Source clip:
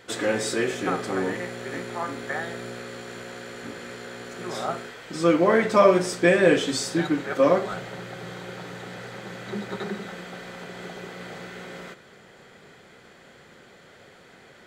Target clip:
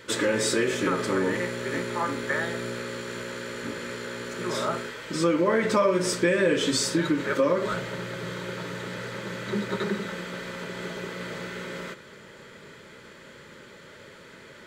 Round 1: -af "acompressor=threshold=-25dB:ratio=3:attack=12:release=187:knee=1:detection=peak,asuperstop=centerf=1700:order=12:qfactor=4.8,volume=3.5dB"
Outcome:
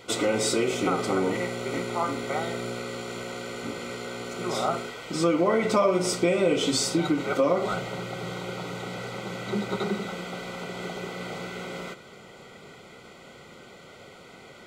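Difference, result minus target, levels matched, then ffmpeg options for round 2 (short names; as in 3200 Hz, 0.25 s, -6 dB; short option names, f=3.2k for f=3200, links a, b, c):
2000 Hz band -3.5 dB
-af "acompressor=threshold=-25dB:ratio=3:attack=12:release=187:knee=1:detection=peak,asuperstop=centerf=740:order=12:qfactor=4.8,volume=3.5dB"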